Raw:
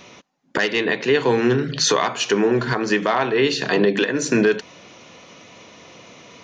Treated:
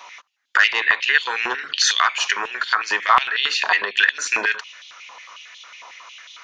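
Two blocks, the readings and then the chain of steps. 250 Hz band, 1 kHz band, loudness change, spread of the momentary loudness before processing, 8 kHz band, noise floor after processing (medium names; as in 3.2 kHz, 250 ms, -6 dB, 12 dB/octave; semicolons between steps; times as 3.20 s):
-23.5 dB, +4.0 dB, +1.0 dB, 3 LU, +0.5 dB, -48 dBFS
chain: step-sequenced high-pass 11 Hz 940–3400 Hz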